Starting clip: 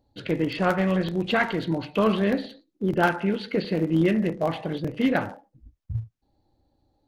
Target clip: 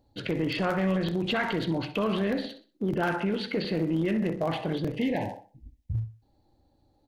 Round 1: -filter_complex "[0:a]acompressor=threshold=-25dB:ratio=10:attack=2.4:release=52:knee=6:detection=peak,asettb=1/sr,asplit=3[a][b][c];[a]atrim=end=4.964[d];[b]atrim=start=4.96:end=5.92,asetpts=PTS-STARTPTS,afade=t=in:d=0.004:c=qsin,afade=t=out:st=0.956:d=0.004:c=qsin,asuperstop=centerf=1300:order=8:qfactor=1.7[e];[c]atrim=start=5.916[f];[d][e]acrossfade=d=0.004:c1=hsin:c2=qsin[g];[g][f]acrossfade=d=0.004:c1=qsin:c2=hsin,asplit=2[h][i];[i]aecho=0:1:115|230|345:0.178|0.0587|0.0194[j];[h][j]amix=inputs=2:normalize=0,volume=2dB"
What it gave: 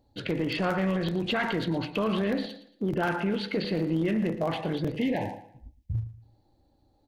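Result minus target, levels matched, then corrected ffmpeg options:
echo 52 ms late
-filter_complex "[0:a]acompressor=threshold=-25dB:ratio=10:attack=2.4:release=52:knee=6:detection=peak,asettb=1/sr,asplit=3[a][b][c];[a]atrim=end=4.964[d];[b]atrim=start=4.96:end=5.92,asetpts=PTS-STARTPTS,afade=t=in:d=0.004:c=qsin,afade=t=out:st=0.956:d=0.004:c=qsin,asuperstop=centerf=1300:order=8:qfactor=1.7[e];[c]atrim=start=5.916[f];[d][e]acrossfade=d=0.004:c1=hsin:c2=qsin[g];[g][f]acrossfade=d=0.004:c1=qsin:c2=hsin,asplit=2[h][i];[i]aecho=0:1:63|126|189:0.178|0.0587|0.0194[j];[h][j]amix=inputs=2:normalize=0,volume=2dB"

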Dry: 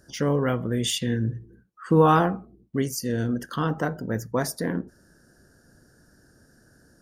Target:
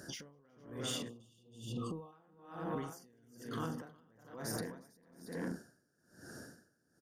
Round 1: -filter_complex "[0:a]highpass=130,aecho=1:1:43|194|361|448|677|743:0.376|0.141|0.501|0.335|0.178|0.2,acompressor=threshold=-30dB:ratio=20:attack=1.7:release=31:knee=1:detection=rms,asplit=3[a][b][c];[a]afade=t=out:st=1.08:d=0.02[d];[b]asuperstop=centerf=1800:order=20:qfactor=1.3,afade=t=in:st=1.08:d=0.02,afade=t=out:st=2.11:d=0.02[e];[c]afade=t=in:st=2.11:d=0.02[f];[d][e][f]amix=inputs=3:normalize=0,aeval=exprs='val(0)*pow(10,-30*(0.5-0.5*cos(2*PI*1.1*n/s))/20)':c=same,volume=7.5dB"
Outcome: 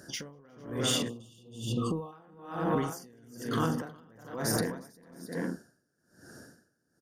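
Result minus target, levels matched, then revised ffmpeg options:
compressor: peak gain reduction -10.5 dB
-filter_complex "[0:a]highpass=130,aecho=1:1:43|194|361|448|677|743:0.376|0.141|0.501|0.335|0.178|0.2,acompressor=threshold=-41dB:ratio=20:attack=1.7:release=31:knee=1:detection=rms,asplit=3[a][b][c];[a]afade=t=out:st=1.08:d=0.02[d];[b]asuperstop=centerf=1800:order=20:qfactor=1.3,afade=t=in:st=1.08:d=0.02,afade=t=out:st=2.11:d=0.02[e];[c]afade=t=in:st=2.11:d=0.02[f];[d][e][f]amix=inputs=3:normalize=0,aeval=exprs='val(0)*pow(10,-30*(0.5-0.5*cos(2*PI*1.1*n/s))/20)':c=same,volume=7.5dB"

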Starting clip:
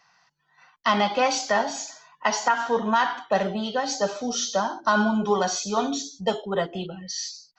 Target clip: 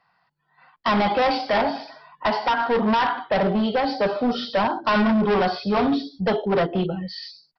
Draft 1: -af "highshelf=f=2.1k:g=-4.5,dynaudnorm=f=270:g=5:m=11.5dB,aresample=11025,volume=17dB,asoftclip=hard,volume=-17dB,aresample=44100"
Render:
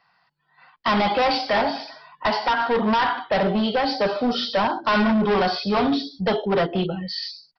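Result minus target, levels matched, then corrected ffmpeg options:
4000 Hz band +3.5 dB
-af "highshelf=f=2.1k:g=-12.5,dynaudnorm=f=270:g=5:m=11.5dB,aresample=11025,volume=17dB,asoftclip=hard,volume=-17dB,aresample=44100"

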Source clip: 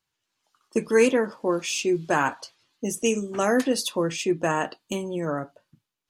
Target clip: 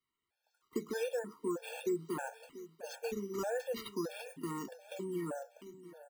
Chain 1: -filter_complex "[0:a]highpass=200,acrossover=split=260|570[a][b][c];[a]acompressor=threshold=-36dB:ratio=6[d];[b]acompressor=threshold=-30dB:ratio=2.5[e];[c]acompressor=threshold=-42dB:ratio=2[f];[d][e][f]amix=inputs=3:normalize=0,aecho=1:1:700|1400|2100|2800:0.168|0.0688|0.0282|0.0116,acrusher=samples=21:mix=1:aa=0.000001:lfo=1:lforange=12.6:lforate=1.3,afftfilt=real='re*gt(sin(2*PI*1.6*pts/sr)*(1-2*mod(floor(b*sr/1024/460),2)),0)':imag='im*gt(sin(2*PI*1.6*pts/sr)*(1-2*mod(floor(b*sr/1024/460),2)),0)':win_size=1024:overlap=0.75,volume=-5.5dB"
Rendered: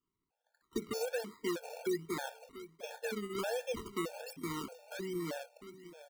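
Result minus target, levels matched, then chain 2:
decimation with a swept rate: distortion +10 dB
-filter_complex "[0:a]highpass=200,acrossover=split=260|570[a][b][c];[a]acompressor=threshold=-36dB:ratio=6[d];[b]acompressor=threshold=-30dB:ratio=2.5[e];[c]acompressor=threshold=-42dB:ratio=2[f];[d][e][f]amix=inputs=3:normalize=0,aecho=1:1:700|1400|2100|2800:0.168|0.0688|0.0282|0.0116,acrusher=samples=6:mix=1:aa=0.000001:lfo=1:lforange=3.6:lforate=1.3,afftfilt=real='re*gt(sin(2*PI*1.6*pts/sr)*(1-2*mod(floor(b*sr/1024/460),2)),0)':imag='im*gt(sin(2*PI*1.6*pts/sr)*(1-2*mod(floor(b*sr/1024/460),2)),0)':win_size=1024:overlap=0.75,volume=-5.5dB"

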